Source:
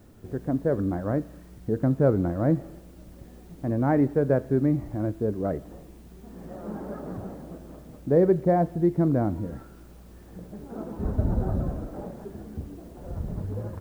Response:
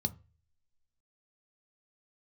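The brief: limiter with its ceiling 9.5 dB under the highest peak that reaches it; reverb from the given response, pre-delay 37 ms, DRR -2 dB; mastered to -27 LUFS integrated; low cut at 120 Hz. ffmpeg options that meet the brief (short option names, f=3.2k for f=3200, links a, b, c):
-filter_complex "[0:a]highpass=120,alimiter=limit=-18dB:level=0:latency=1,asplit=2[a][b];[1:a]atrim=start_sample=2205,adelay=37[c];[b][c]afir=irnorm=-1:irlink=0,volume=0.5dB[d];[a][d]amix=inputs=2:normalize=0,volume=-7dB"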